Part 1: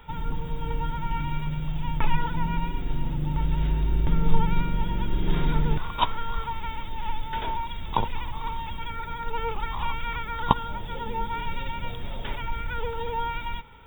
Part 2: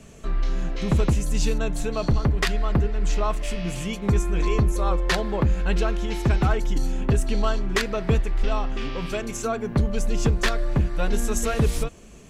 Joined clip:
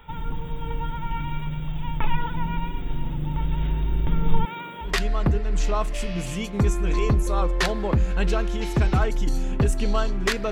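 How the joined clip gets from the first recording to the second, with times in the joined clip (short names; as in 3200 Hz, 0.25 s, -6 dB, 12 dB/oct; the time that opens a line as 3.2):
part 1
4.45–4.96 HPF 390 Hz 12 dB/oct
4.88 switch to part 2 from 2.37 s, crossfade 0.16 s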